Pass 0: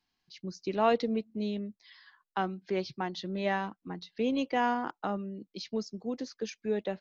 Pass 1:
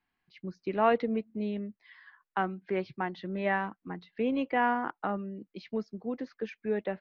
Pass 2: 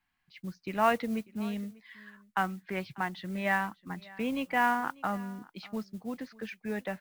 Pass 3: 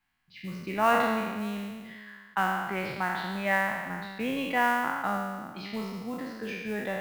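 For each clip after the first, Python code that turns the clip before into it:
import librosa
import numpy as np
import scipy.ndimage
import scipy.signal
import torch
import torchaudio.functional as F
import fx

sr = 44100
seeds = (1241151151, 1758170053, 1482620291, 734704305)

y1 = fx.lowpass_res(x, sr, hz=2000.0, q=1.5)
y2 = fx.peak_eq(y1, sr, hz=400.0, db=-11.5, octaves=1.3)
y2 = fx.mod_noise(y2, sr, seeds[0], snr_db=24)
y2 = y2 + 10.0 ** (-22.5 / 20.0) * np.pad(y2, (int(594 * sr / 1000.0), 0))[:len(y2)]
y2 = y2 * librosa.db_to_amplitude(3.5)
y3 = fx.spec_trails(y2, sr, decay_s=1.51)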